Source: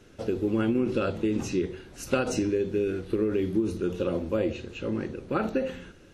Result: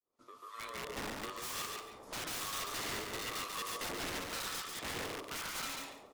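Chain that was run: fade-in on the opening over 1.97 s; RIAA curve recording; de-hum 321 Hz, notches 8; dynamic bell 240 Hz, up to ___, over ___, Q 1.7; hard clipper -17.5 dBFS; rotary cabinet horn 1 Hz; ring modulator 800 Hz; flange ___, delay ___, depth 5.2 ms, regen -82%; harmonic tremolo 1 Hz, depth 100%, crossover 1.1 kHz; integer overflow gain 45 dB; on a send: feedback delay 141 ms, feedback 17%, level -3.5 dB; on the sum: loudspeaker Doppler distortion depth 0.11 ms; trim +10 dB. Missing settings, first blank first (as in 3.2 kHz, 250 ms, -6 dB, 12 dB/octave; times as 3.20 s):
-4 dB, -43 dBFS, 0.64 Hz, 7.3 ms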